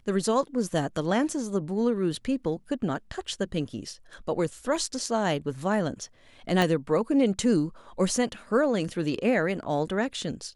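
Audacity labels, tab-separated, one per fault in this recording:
6.620000	6.620000	click −11 dBFS

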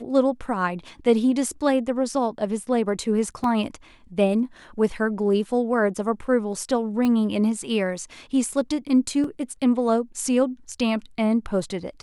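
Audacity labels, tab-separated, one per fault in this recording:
3.440000	3.440000	drop-out 2.5 ms
7.050000	7.050000	click −13 dBFS
9.240000	9.240000	drop-out 3.1 ms

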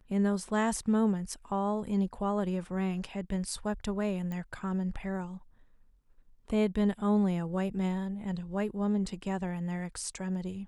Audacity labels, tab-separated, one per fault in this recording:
4.320000	4.320000	click −26 dBFS

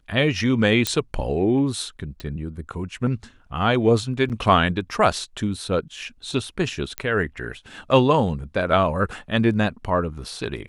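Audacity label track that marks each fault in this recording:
0.870000	0.870000	click −5 dBFS
2.200000	2.200000	click −20 dBFS
4.290000	4.300000	drop-out 8.3 ms
6.980000	6.980000	click −9 dBFS

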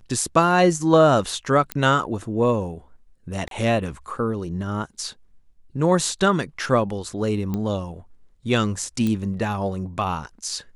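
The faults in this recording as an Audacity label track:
1.720000	1.720000	click −9 dBFS
3.480000	3.510000	drop-out 32 ms
7.540000	7.540000	click −15 dBFS
9.070000	9.070000	click −13 dBFS

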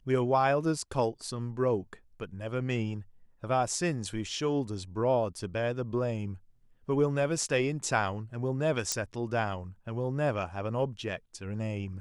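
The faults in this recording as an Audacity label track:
8.920000	8.920000	click −13 dBFS

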